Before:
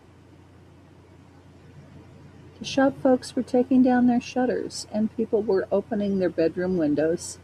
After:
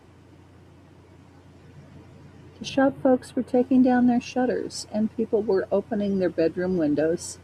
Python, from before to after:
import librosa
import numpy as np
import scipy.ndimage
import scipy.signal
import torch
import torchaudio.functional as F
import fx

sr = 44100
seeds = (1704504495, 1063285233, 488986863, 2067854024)

y = fx.peak_eq(x, sr, hz=5700.0, db=-14.0, octaves=0.81, at=(2.69, 3.54))